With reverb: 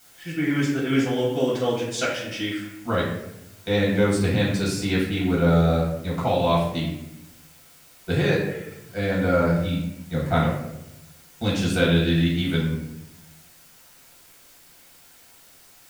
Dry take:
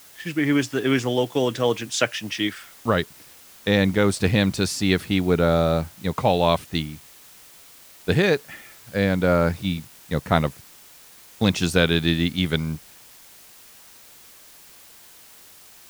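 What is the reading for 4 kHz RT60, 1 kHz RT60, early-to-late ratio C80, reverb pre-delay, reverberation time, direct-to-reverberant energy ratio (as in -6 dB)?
0.55 s, 0.80 s, 6.0 dB, 3 ms, 0.90 s, -6.5 dB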